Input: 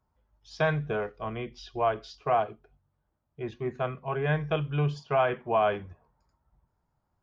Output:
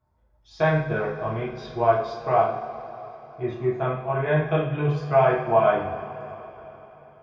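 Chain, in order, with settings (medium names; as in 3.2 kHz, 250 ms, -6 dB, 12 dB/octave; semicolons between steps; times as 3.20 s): treble shelf 3 kHz -9.5 dB; band-stop 3 kHz, Q 12; two-slope reverb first 0.49 s, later 4.1 s, from -18 dB, DRR -5.5 dB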